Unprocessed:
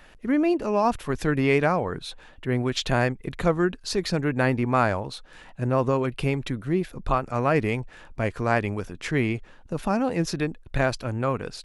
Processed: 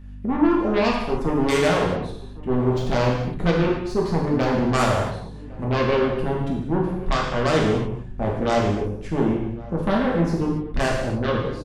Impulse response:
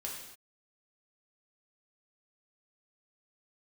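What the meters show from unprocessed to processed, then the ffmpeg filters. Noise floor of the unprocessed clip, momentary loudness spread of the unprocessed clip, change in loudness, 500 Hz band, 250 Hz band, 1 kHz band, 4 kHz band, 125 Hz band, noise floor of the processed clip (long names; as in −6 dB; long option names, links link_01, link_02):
−50 dBFS, 9 LU, +3.0 dB, +3.5 dB, +3.5 dB, +2.0 dB, +2.5 dB, +2.5 dB, −37 dBFS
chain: -filter_complex "[0:a]aeval=exprs='0.422*(cos(1*acos(clip(val(0)/0.422,-1,1)))-cos(1*PI/2))+0.0119*(cos(2*acos(clip(val(0)/0.422,-1,1)))-cos(2*PI/2))+0.0237*(cos(3*acos(clip(val(0)/0.422,-1,1)))-cos(3*PI/2))+0.0168*(cos(7*acos(clip(val(0)/0.422,-1,1)))-cos(7*PI/2))+0.00944*(cos(8*acos(clip(val(0)/0.422,-1,1)))-cos(8*PI/2))':channel_layout=same,deesser=0.65,afwtdn=0.0447,asplit=2[link_01][link_02];[link_02]aeval=exprs='0.376*sin(PI/2*6.31*val(0)/0.376)':channel_layout=same,volume=-12dB[link_03];[link_01][link_03]amix=inputs=2:normalize=0,aeval=exprs='val(0)+0.0126*(sin(2*PI*50*n/s)+sin(2*PI*2*50*n/s)/2+sin(2*PI*3*50*n/s)/3+sin(2*PI*4*50*n/s)/4+sin(2*PI*5*50*n/s)/5)':channel_layout=same,asplit=2[link_04][link_05];[link_05]adelay=1108,volume=-20dB,highshelf=frequency=4000:gain=-24.9[link_06];[link_04][link_06]amix=inputs=2:normalize=0[link_07];[1:a]atrim=start_sample=2205[link_08];[link_07][link_08]afir=irnorm=-1:irlink=0,volume=1dB"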